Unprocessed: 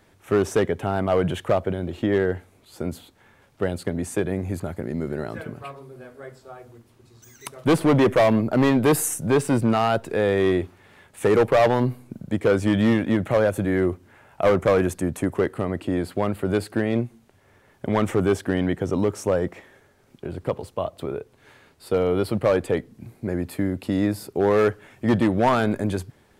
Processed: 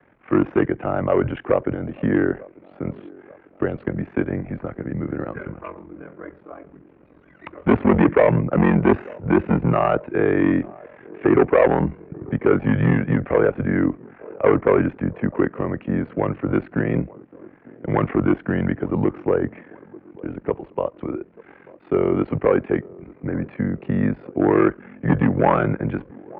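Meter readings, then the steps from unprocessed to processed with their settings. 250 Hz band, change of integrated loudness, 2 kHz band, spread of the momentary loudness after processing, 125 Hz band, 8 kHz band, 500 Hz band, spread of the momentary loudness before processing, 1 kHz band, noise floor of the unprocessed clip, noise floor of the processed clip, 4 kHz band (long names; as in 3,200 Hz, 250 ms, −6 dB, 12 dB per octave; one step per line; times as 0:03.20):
+3.0 dB, +1.5 dB, +1.5 dB, 15 LU, +3.0 dB, below −40 dB, +1.0 dB, 14 LU, +1.5 dB, −58 dBFS, −52 dBFS, below −10 dB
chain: delay with a band-pass on its return 891 ms, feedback 55%, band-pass 570 Hz, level −22 dB
ring modulation 22 Hz
single-sideband voice off tune −76 Hz 180–2,500 Hz
level +5.5 dB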